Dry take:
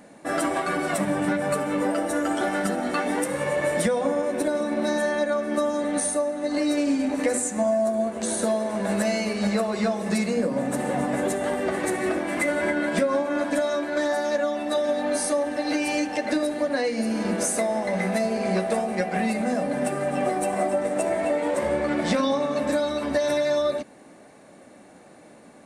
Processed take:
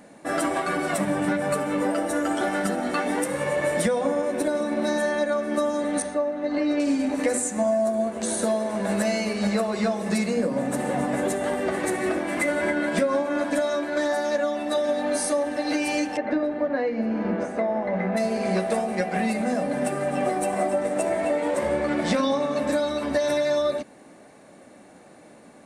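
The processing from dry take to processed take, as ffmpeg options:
ffmpeg -i in.wav -filter_complex "[0:a]asettb=1/sr,asplit=3[link_01][link_02][link_03];[link_01]atrim=end=6.024[link_04];[link_02]atrim=start=6.02:end=6.8,asetpts=PTS-STARTPTS,afade=type=in:duration=0.004:curve=qsin,afade=type=out:start_time=0.776:duration=0.004:curve=qsin,lowpass=3100[link_05];[link_03]atrim=start=6.796[link_06];[link_04][link_05]acrossfade=duration=0.004:curve1=hsin:curve2=qsin[link_07];[link_07][link_06]acrossfade=duration=0.004:curve1=qsin:curve2=hsin,asplit=3[link_08][link_09][link_10];[link_08]afade=type=out:start_time=16.16:duration=0.02[link_11];[link_09]lowpass=1800,afade=type=in:start_time=16.16:duration=0.02,afade=type=out:start_time=18.16:duration=0.02[link_12];[link_10]afade=type=in:start_time=18.16:duration=0.02[link_13];[link_11][link_12][link_13]amix=inputs=3:normalize=0" out.wav

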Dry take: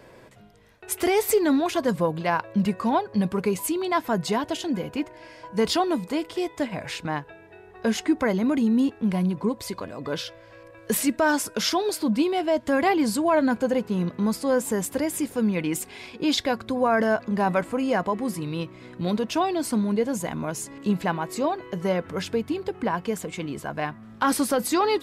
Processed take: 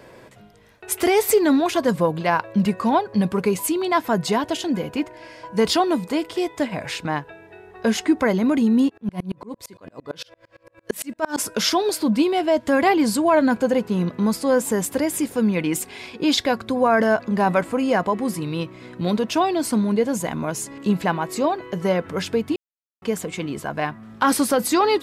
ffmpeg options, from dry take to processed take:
ffmpeg -i in.wav -filter_complex "[0:a]asplit=3[link_01][link_02][link_03];[link_01]afade=type=out:start_time=8.88:duration=0.02[link_04];[link_02]aeval=exprs='val(0)*pow(10,-33*if(lt(mod(-8.8*n/s,1),2*abs(-8.8)/1000),1-mod(-8.8*n/s,1)/(2*abs(-8.8)/1000),(mod(-8.8*n/s,1)-2*abs(-8.8)/1000)/(1-2*abs(-8.8)/1000))/20)':channel_layout=same,afade=type=in:start_time=8.88:duration=0.02,afade=type=out:start_time=11.37:duration=0.02[link_05];[link_03]afade=type=in:start_time=11.37:duration=0.02[link_06];[link_04][link_05][link_06]amix=inputs=3:normalize=0,asplit=3[link_07][link_08][link_09];[link_07]atrim=end=22.56,asetpts=PTS-STARTPTS,afade=type=out:start_time=22.556:duration=0.004:curve=hsin[link_10];[link_08]atrim=start=22.56:end=23.02,asetpts=PTS-STARTPTS,volume=0[link_11];[link_09]atrim=start=23.02,asetpts=PTS-STARTPTS,afade=type=in:duration=0.004:curve=hsin[link_12];[link_10][link_11][link_12]concat=n=3:v=0:a=1,lowshelf=frequency=67:gain=-5.5,volume=4dB" out.wav

